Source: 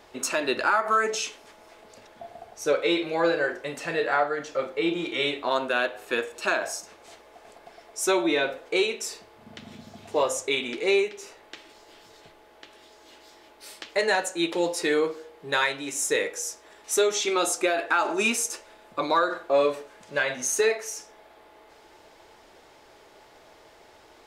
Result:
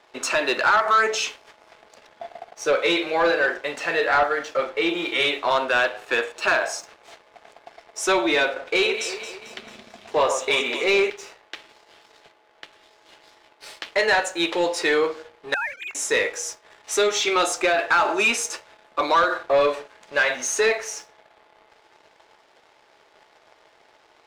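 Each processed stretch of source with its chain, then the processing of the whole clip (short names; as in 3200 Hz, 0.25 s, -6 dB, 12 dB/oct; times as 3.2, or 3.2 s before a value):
8.45–11.1 LPF 11000 Hz + echo with dull and thin repeats by turns 0.111 s, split 1900 Hz, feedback 73%, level -8.5 dB
15.54–15.95 sine-wave speech + Bessel high-pass 990 Hz, order 8 + compressor 4:1, threshold -33 dBFS
whole clip: weighting filter A; sample leveller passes 2; high shelf 7100 Hz -11.5 dB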